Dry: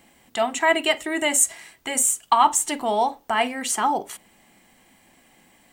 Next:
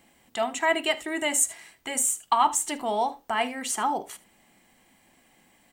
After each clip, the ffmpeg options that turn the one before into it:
ffmpeg -i in.wav -af "aecho=1:1:76:0.106,volume=-4.5dB" out.wav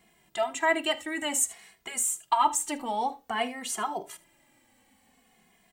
ffmpeg -i in.wav -filter_complex "[0:a]asplit=2[link_01][link_02];[link_02]adelay=2.4,afreqshift=-0.54[link_03];[link_01][link_03]amix=inputs=2:normalize=1" out.wav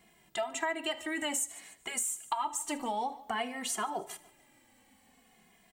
ffmpeg -i in.wav -af "aecho=1:1:146|292|438:0.0794|0.0294|0.0109,acompressor=threshold=-30dB:ratio=6" out.wav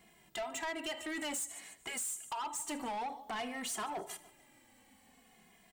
ffmpeg -i in.wav -af "asoftclip=type=tanh:threshold=-34.5dB" out.wav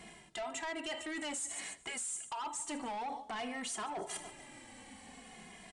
ffmpeg -i in.wav -af "areverse,acompressor=threshold=-51dB:ratio=5,areverse,aresample=22050,aresample=44100,volume=11dB" out.wav

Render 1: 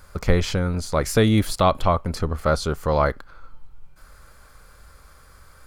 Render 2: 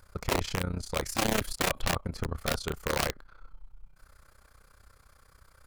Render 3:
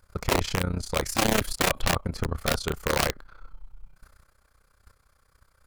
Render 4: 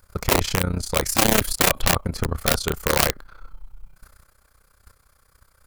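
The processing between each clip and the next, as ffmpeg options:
ffmpeg -i in.wav -af "aeval=exprs='(mod(4.22*val(0)+1,2)-1)/4.22':channel_layout=same,tremolo=f=31:d=0.857,volume=-5.5dB" out.wav
ffmpeg -i in.wav -af "agate=range=-10dB:threshold=-53dB:ratio=16:detection=peak,volume=4.5dB" out.wav
ffmpeg -i in.wav -af "highshelf=frequency=9100:gain=9,volume=4dB" out.wav

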